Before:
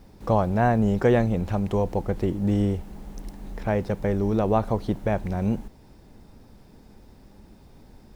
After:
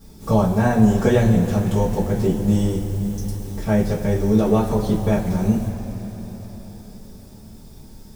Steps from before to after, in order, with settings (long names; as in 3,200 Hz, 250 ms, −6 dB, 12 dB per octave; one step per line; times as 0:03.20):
bass and treble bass +9 dB, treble +15 dB
convolution reverb, pre-delay 3 ms, DRR −10 dB
level −8.5 dB